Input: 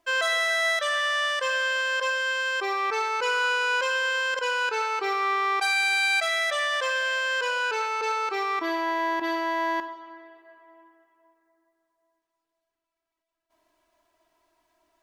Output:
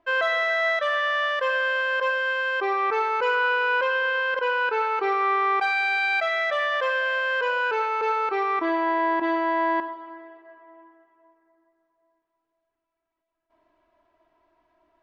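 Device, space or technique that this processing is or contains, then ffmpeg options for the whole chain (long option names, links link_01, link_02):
phone in a pocket: -filter_complex "[0:a]asettb=1/sr,asplit=3[link_01][link_02][link_03];[link_01]atrim=end=3.354[link_04];[link_02]atrim=start=3.35:end=4.98,asetpts=PTS-STARTPTS,afade=type=in:duration=0.004:curve=qsin,afade=type=out:start_time=1.626:duration=0.004:curve=qsin,lowpass=5500[link_05];[link_03]atrim=start=4.976[link_06];[link_04][link_05]acrossfade=duration=0.004:curve1=hsin:curve2=qsin[link_07];[link_07][link_06]acrossfade=duration=0.004:curve1=qsin:curve2=hsin,lowpass=3100,highshelf=frequency=2100:gain=-8.5,volume=5dB"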